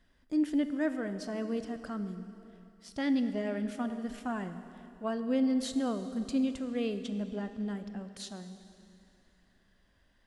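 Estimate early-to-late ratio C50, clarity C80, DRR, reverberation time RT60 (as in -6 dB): 10.0 dB, 11.0 dB, 9.5 dB, 2.7 s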